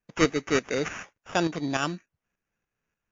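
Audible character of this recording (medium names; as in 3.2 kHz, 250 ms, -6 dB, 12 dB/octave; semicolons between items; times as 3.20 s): tremolo saw up 3.4 Hz, depth 60%; aliases and images of a low sample rate 4.2 kHz, jitter 0%; MP3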